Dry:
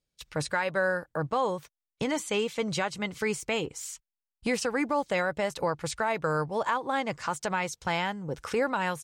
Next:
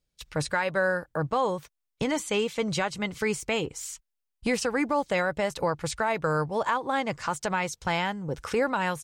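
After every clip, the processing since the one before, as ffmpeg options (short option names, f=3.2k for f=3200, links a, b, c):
-af "lowshelf=f=74:g=7.5,volume=1.5dB"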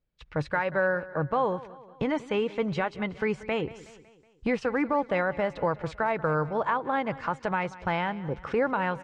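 -af "lowpass=2.2k,aecho=1:1:185|370|555|740:0.126|0.0655|0.034|0.0177"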